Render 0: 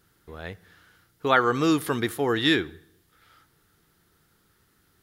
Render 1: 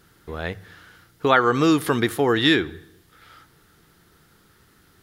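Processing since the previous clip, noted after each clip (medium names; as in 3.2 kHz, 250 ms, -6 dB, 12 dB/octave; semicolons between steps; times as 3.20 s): treble shelf 8.4 kHz -5 dB; hum notches 50/100 Hz; compression 1.5:1, threshold -32 dBFS, peak gain reduction 6.5 dB; trim +9 dB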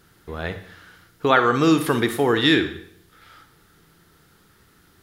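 Schroeder reverb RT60 0.57 s, DRR 9 dB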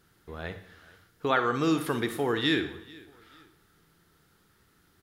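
feedback delay 440 ms, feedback 34%, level -23 dB; trim -8.5 dB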